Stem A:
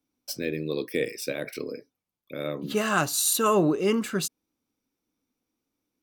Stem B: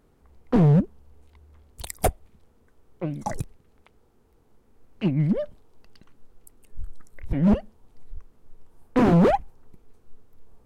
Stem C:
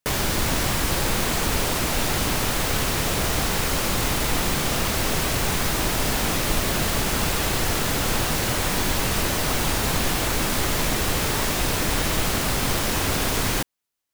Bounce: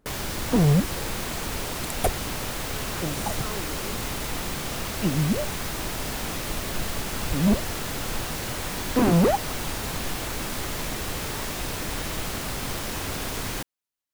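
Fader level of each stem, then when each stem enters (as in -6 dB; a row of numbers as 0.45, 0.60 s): -17.0, -2.0, -7.5 dB; 0.00, 0.00, 0.00 s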